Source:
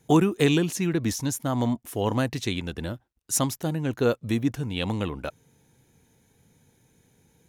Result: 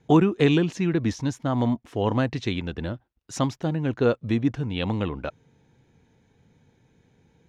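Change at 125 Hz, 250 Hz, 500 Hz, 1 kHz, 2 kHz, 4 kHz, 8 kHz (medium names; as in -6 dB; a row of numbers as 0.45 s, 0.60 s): +2.0 dB, +2.0 dB, +1.5 dB, +1.5 dB, +0.5 dB, -2.0 dB, -11.5 dB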